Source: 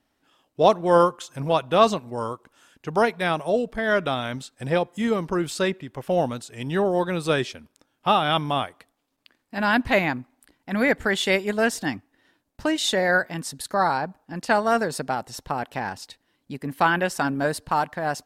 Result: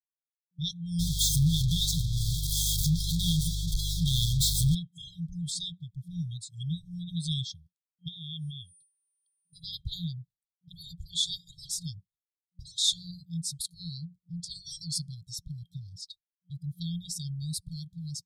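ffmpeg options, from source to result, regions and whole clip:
-filter_complex "[0:a]asettb=1/sr,asplit=3[a][b][c];[a]atrim=end=0.994[d];[b]atrim=start=0.99:end=4.75,asetpts=PTS-STARTPTS,afade=t=in:d=0.004:c=qsin,afade=t=out:st=3.756:d=0.004:c=qsin,aeval=exprs='val(0)+0.5*0.106*sgn(val(0))':c=same,aeval=exprs='val(0)+0.0316*(sin(2*PI*50*n/s)+sin(2*PI*2*50*n/s)/2+sin(2*PI*3*50*n/s)/3+sin(2*PI*4*50*n/s)/4+sin(2*PI*5*50*n/s)/5)':c=same[e];[c]atrim=start=4.746[f];[d][e]acrossfade=d=0.004:c1=hsin:c2=qsin[g];[g][f]acrossfade=d=0.004:c1=qsin:c2=hsin,asettb=1/sr,asplit=3[h][i][j];[h]atrim=end=8.084[k];[i]atrim=start=8.08:end=9.64,asetpts=PTS-STARTPTS,afade=t=in:d=0.004:c=qsin,afade=t=out:st=1.556:d=0.004:c=qsin,aeval=exprs='val(0)+0.00178*sin(2*PI*9300*n/s)':c=same,acompressor=threshold=-29dB:ratio=4:attack=3.2:release=140:knee=1:detection=peak[l];[j]atrim=start=9.636[m];[k][l]acrossfade=d=0.004:c1=hsin:c2=qsin[n];[n][m]acrossfade=d=0.004:c1=qsin:c2=hsin,asettb=1/sr,asplit=3[o][p][q];[o]atrim=end=14.604[r];[p]atrim=start=14.6:end=15.08,asetpts=PTS-STARTPTS,afade=t=in:d=0.004:c=qsin,afade=t=out:st=0.476:d=0.004:c=qsin,equalizer=f=3.7k:w=1.2:g=8.5,bandreject=f=3.8k:w=5.5[s];[q]atrim=start=15.076[t];[r][s]acrossfade=d=0.004:c1=hsin:c2=qsin[u];[u][t]acrossfade=d=0.004:c1=qsin:c2=hsin,afftdn=nr=20:nf=-43,agate=range=-33dB:threshold=-48dB:ratio=3:detection=peak,afftfilt=real='re*(1-between(b*sr/4096,180,3200))':imag='im*(1-between(b*sr/4096,180,3200))':win_size=4096:overlap=0.75"

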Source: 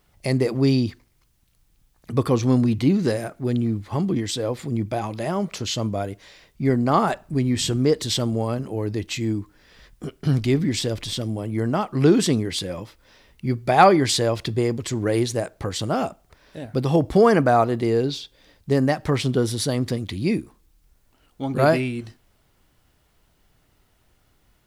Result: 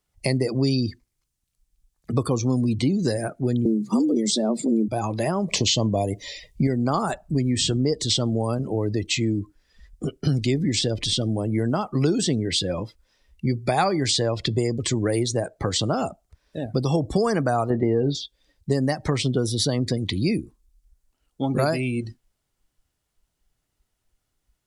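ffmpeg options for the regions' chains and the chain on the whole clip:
-filter_complex "[0:a]asettb=1/sr,asplit=3[a][b][c];[a]atrim=end=3.654[d];[b]atrim=start=3.65:end=4.88,asetpts=PTS-STARTPTS,afade=t=in:d=0.004:c=qsin,afade=t=out:st=1.226:d=0.004:c=qsin,bass=f=250:g=11,treble=f=4k:g=7,afreqshift=110[e];[c]atrim=start=4.876[f];[d][e]acrossfade=d=0.004:c1=hsin:c2=qsin[g];[g][f]acrossfade=d=0.004:c1=qsin:c2=hsin,asettb=1/sr,asplit=3[h][i][j];[h]atrim=end=5.484[k];[i]atrim=start=5.48:end=6.67,asetpts=PTS-STARTPTS,afade=t=in:d=0.004:c=qsin,afade=t=out:st=1.186:d=0.004:c=qsin,asuperstop=centerf=1400:order=4:qfactor=2.4,acontrast=75[l];[j]atrim=start=6.666[m];[k][l]acrossfade=d=0.004:c1=hsin:c2=qsin[n];[n][m]acrossfade=d=0.004:c1=qsin:c2=hsin,asettb=1/sr,asplit=3[o][p][q];[o]atrim=end=17.704[r];[p]atrim=start=17.7:end=18.15,asetpts=PTS-STARTPTS,afade=t=in:d=0.004:c=qsin,afade=t=out:st=0.446:d=0.004:c=qsin,lowpass=1.9k,asplit=2[s][t];[t]adelay=21,volume=-11dB[u];[s][u]amix=inputs=2:normalize=0,atrim=end_sample=19845,acontrast=75[v];[q]atrim=start=18.146[w];[r][v]acrossfade=d=0.004:c1=hsin:c2=qsin[x];[x][w]acrossfade=d=0.004:c1=qsin:c2=hsin,equalizer=f=7.9k:w=0.66:g=8.5,acrossover=split=110|5200[y][z][aa];[y]acompressor=threshold=-38dB:ratio=4[ab];[z]acompressor=threshold=-26dB:ratio=4[ac];[aa]acompressor=threshold=-39dB:ratio=4[ad];[ab][ac][ad]amix=inputs=3:normalize=0,afftdn=nr=21:nf=-40,volume=5dB"

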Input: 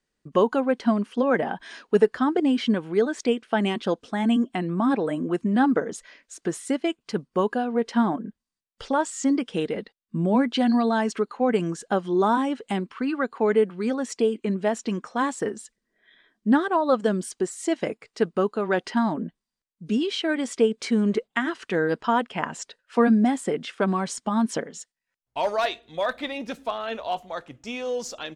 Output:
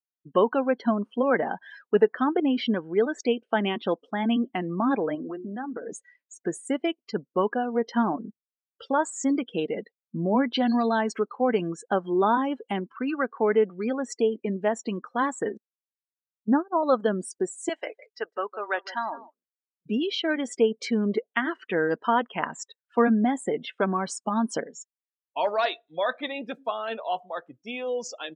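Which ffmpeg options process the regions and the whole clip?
-filter_complex "[0:a]asettb=1/sr,asplit=3[a][b][c];[a]atrim=end=5.154[d];[b]atrim=start=5.15:end=5.92,asetpts=PTS-STARTPTS,afade=t=in:d=0.004:c=qsin,afade=t=out:st=0.766:d=0.004:c=qsin,equalizer=f=90:t=o:w=1.3:g=-12.5,bandreject=f=60:t=h:w=6,bandreject=f=120:t=h:w=6,bandreject=f=180:t=h:w=6,bandreject=f=240:t=h:w=6,bandreject=f=300:t=h:w=6,bandreject=f=360:t=h:w=6,acompressor=threshold=-28dB:ratio=10:attack=3.2:release=140:knee=1:detection=peak[e];[c]atrim=start=5.916[f];[d][e]acrossfade=d=0.004:c1=hsin:c2=qsin[g];[g][f]acrossfade=d=0.004:c1=qsin:c2=hsin,asettb=1/sr,asplit=3[h][i][j];[h]atrim=end=15.574[k];[i]atrim=start=15.57:end=16.83,asetpts=PTS-STARTPTS,afade=t=in:d=0.004:c=qsin,afade=t=out:st=1.256:d=0.004:c=qsin,lowpass=1.1k,agate=range=-19dB:threshold=-25dB:ratio=16:release=100:detection=peak[l];[j]atrim=start=16.826[m];[k][l]acrossfade=d=0.004:c1=hsin:c2=qsin[n];[n][m]acrossfade=d=0.004:c1=qsin:c2=hsin,asettb=1/sr,asplit=3[o][p][q];[o]atrim=end=17.694[r];[p]atrim=start=17.69:end=19.86,asetpts=PTS-STARTPTS,afade=t=in:d=0.004:c=qsin,afade=t=out:st=2.166:d=0.004:c=qsin,highpass=700,aecho=1:1:159:0.178,atrim=end_sample=95697[s];[q]atrim=start=19.856[t];[r][s]acrossfade=d=0.004:c1=hsin:c2=qsin[u];[u][t]acrossfade=d=0.004:c1=qsin:c2=hsin,highpass=f=240:p=1,afftdn=nr=30:nf=-38"

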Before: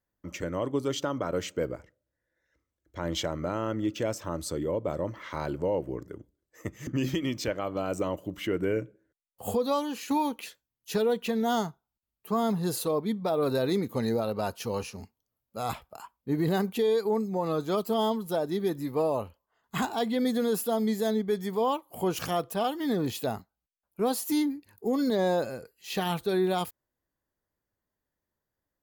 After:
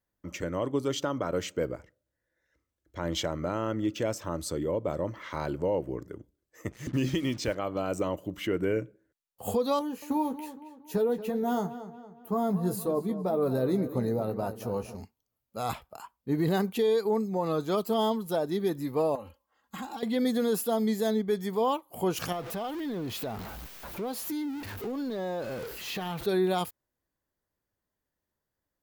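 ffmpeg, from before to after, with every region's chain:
-filter_complex "[0:a]asettb=1/sr,asplit=3[a][b][c];[a]atrim=end=6.714[d];[b]atrim=start=6.71:end=7.55,asetpts=PTS-STARTPTS,afade=t=in:d=0.004:c=qsin,afade=t=out:st=0.836:d=0.004:c=qsin,lowpass=9.3k,lowshelf=f=82:g=5,acrusher=bits=7:mix=0:aa=0.5[e];[c]atrim=start=7.546[f];[d][e]acrossfade=d=0.004:c1=hsin:c2=qsin[g];[g][f]acrossfade=d=0.004:c1=qsin:c2=hsin,asettb=1/sr,asplit=3[h][i][j];[h]atrim=end=9.794[k];[i]atrim=start=9.79:end=14.95,asetpts=PTS-STARTPTS,afade=t=in:d=0.004:c=qsin,afade=t=out:st=5.156:d=0.004:c=qsin,equalizer=f=3.7k:w=0.44:g=-13,asplit=2[l][m];[m]adelay=16,volume=-8.5dB[n];[l][n]amix=inputs=2:normalize=0,atrim=end_sample=227556,asplit=2[o][p];[p]adelay=231,lowpass=f=4.4k:p=1,volume=-12.5dB,asplit=2[q][r];[r]adelay=231,lowpass=f=4.4k:p=1,volume=0.46,asplit=2[s][t];[t]adelay=231,lowpass=f=4.4k:p=1,volume=0.46,asplit=2[u][v];[v]adelay=231,lowpass=f=4.4k:p=1,volume=0.46,asplit=2[w][x];[x]adelay=231,lowpass=f=4.4k:p=1,volume=0.46[y];[o][q][s][u][w][y]amix=inputs=6:normalize=0,atrim=end_sample=227556[z];[j]atrim=start=14.946[aa];[k][z]acrossfade=d=0.004:c1=hsin:c2=qsin[ab];[ab][aa]acrossfade=d=0.004:c1=qsin:c2=hsin,asettb=1/sr,asplit=3[ac][ad][ae];[ac]atrim=end=19.154[af];[ad]atrim=start=19.15:end=20.03,asetpts=PTS-STARTPTS,afade=t=in:d=0.004:c=qsin,afade=t=out:st=0.876:d=0.004:c=qsin,highpass=46,acompressor=threshold=-37dB:ratio=10:attack=3.2:release=140:knee=1:detection=peak,aecho=1:1:3.7:0.9,atrim=end_sample=38808[ag];[ae]atrim=start=20.026[ah];[af][ag]acrossfade=d=0.004:c1=hsin:c2=qsin[ai];[ai][ah]acrossfade=d=0.004:c1=qsin:c2=hsin,asettb=1/sr,asplit=3[aj][ak][al];[aj]atrim=end=22.324[am];[ak]atrim=start=22.32:end=26.26,asetpts=PTS-STARTPTS,afade=t=in:d=0.004:c=qsin,afade=t=out:st=3.936:d=0.004:c=qsin,aeval=exprs='val(0)+0.5*0.0211*sgn(val(0))':c=same,equalizer=f=8.8k:w=0.73:g=-7,acompressor=threshold=-33dB:ratio=3:attack=3.2:release=140:knee=1:detection=peak[an];[al]atrim=start=26.256[ao];[am][an]acrossfade=d=0.004:c1=hsin:c2=qsin[ap];[ap][ao]acrossfade=d=0.004:c1=qsin:c2=hsin"

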